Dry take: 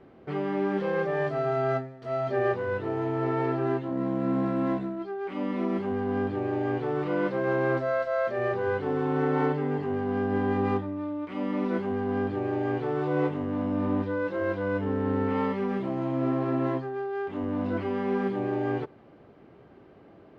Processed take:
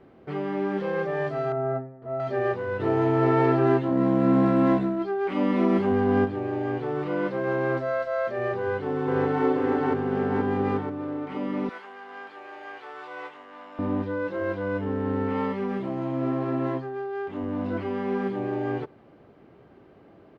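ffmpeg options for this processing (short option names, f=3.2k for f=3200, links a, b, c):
-filter_complex "[0:a]asettb=1/sr,asplit=3[a][b][c];[a]atrim=end=1.524[d];[b]atrim=start=1.52:end=2.2,asetpts=PTS-STARTPTS,afade=t=in:d=0.004:c=qsin,afade=t=out:st=0.676:d=0.004:c=qsin,lowpass=1.1k[e];[c]atrim=start=2.196[f];[d][e]acrossfade=d=0.004:c1=hsin:c2=qsin[g];[g][f]acrossfade=d=0.004:c1=qsin:c2=hsin,asplit=3[h][i][j];[h]afade=t=out:st=2.79:d=0.02[k];[i]acontrast=72,afade=t=in:st=2.79:d=0.02,afade=t=out:st=6.24:d=0.02[l];[j]afade=t=in:st=6.24:d=0.02[m];[k][l][m]amix=inputs=3:normalize=0,asplit=2[n][o];[o]afade=t=in:st=8.59:d=0.01,afade=t=out:st=9.45:d=0.01,aecho=0:1:480|960|1440|1920|2400|2880|3360|3840|4320:0.944061|0.566437|0.339862|0.203917|0.12235|0.0734102|0.0440461|0.0264277|0.0158566[p];[n][p]amix=inputs=2:normalize=0,asettb=1/sr,asplit=3[q][r][s];[q]atrim=end=11.694[t];[r]atrim=start=11.69:end=13.79,asetpts=PTS-STARTPTS,afade=t=in:d=0.004:c=qsin,afade=t=out:st=2.096:d=0.004:c=qsin,highpass=1.1k[u];[s]atrim=start=13.786[v];[t][u]acrossfade=d=0.004:c1=hsin:c2=qsin[w];[w][v]acrossfade=d=0.004:c1=qsin:c2=hsin"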